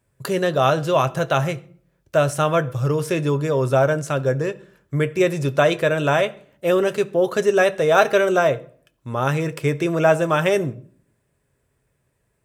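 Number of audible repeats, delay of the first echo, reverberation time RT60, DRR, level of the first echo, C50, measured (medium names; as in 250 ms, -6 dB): no echo, no echo, 0.50 s, 9.5 dB, no echo, 19.5 dB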